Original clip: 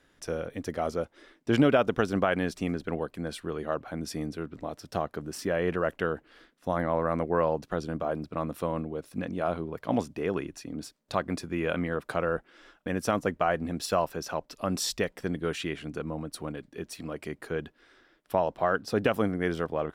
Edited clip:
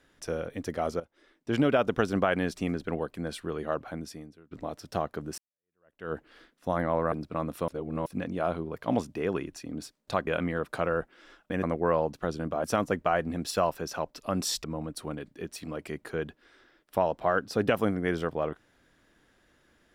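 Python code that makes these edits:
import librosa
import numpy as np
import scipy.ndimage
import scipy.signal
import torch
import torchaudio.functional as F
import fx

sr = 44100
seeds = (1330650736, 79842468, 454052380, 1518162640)

y = fx.edit(x, sr, fx.fade_in_from(start_s=1.0, length_s=0.96, floor_db=-15.0),
    fx.fade_out_to(start_s=3.89, length_s=0.62, curve='qua', floor_db=-22.5),
    fx.fade_in_span(start_s=5.38, length_s=0.75, curve='exp'),
    fx.move(start_s=7.12, length_s=1.01, to_s=12.99),
    fx.reverse_span(start_s=8.69, length_s=0.38),
    fx.cut(start_s=11.28, length_s=0.35),
    fx.cut(start_s=14.99, length_s=1.02), tone=tone)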